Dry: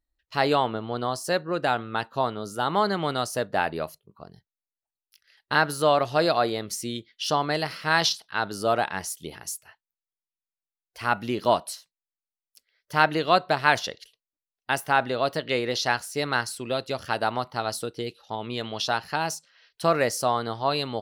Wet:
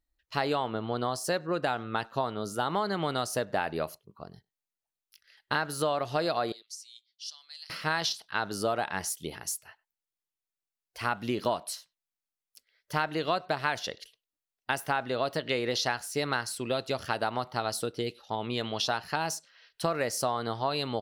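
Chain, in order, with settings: 6.52–7.70 s: ladder band-pass 5.9 kHz, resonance 35%; compression 6:1, threshold -25 dBFS, peak gain reduction 11.5 dB; speakerphone echo 100 ms, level -26 dB

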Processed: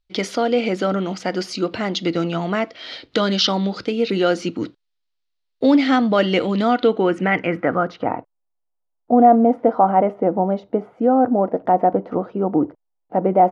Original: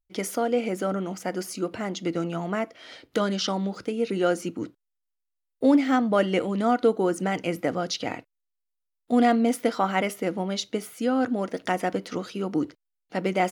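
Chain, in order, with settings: in parallel at -0.5 dB: peak limiter -17.5 dBFS, peak gain reduction 9 dB; on the sum: low-pass sweep 4.2 kHz -> 790 Hz, 6.63–8.36 s; trim +1 dB

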